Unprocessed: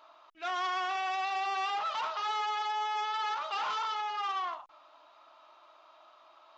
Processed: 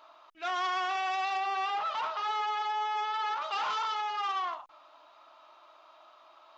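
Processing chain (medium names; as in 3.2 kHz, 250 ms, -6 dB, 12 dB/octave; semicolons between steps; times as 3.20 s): 1.37–3.42 s: treble shelf 4.6 kHz -8.5 dB; trim +1.5 dB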